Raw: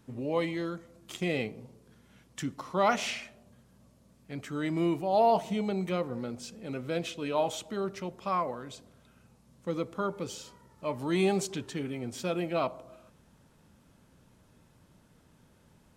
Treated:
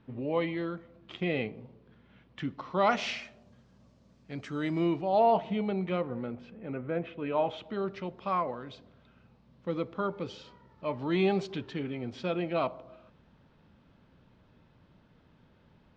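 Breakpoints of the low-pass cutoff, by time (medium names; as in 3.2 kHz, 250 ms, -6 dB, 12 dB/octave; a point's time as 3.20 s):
low-pass 24 dB/octave
2.42 s 3.5 kHz
3.23 s 5.9 kHz
4.70 s 5.9 kHz
5.31 s 3.4 kHz
5.95 s 3.4 kHz
6.98 s 2 kHz
7.89 s 4.1 kHz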